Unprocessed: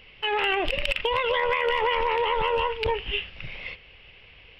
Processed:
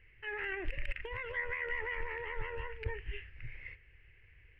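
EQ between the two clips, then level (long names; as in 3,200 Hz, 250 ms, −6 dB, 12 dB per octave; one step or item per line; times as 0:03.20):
drawn EQ curve 120 Hz 0 dB, 190 Hz −17 dB, 350 Hz −7 dB, 620 Hz −20 dB, 1,200 Hz −16 dB, 1,800 Hz +1 dB, 3,500 Hz −27 dB, 5,800 Hz −21 dB
−4.5 dB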